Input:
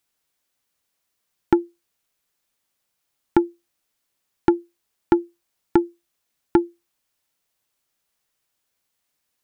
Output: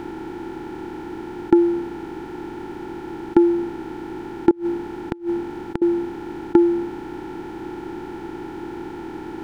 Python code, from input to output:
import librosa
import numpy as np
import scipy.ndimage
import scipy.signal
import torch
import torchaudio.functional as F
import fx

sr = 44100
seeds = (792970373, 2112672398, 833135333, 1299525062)

y = fx.bin_compress(x, sr, power=0.2)
y = fx.dynamic_eq(y, sr, hz=290.0, q=1.0, threshold_db=-29.0, ratio=4.0, max_db=7)
y = fx.gate_flip(y, sr, shuts_db=-3.0, range_db=-27, at=(4.5, 5.82))
y = y * 10.0 ** (-5.0 / 20.0)